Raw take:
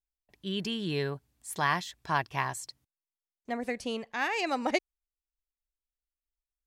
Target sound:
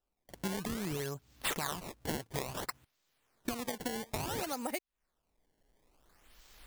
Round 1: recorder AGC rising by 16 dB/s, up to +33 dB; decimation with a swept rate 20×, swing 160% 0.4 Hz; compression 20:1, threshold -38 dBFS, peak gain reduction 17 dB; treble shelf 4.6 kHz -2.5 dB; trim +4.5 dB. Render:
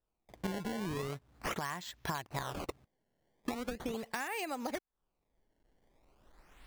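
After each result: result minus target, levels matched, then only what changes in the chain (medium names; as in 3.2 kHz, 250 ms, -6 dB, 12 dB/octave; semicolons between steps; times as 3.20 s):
8 kHz band -5.0 dB; decimation with a swept rate: distortion -5 dB
change: treble shelf 4.6 kHz +8 dB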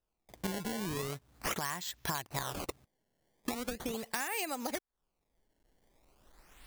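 decimation with a swept rate: distortion -5 dB
change: decimation with a swept rate 20×, swing 160% 0.58 Hz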